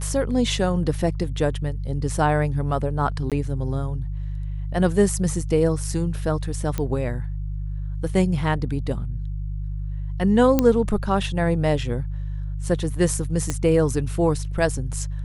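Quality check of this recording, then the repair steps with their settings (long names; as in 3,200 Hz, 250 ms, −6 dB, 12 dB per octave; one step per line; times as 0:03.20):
mains hum 50 Hz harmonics 3 −28 dBFS
0:03.30–0:03.32: drop-out 17 ms
0:06.78: click −12 dBFS
0:10.59: click −5 dBFS
0:13.50: click −10 dBFS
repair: click removal
hum removal 50 Hz, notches 3
repair the gap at 0:03.30, 17 ms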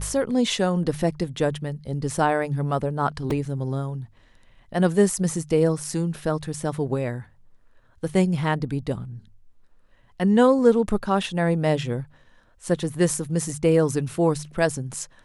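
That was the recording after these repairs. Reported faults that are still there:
0:13.50: click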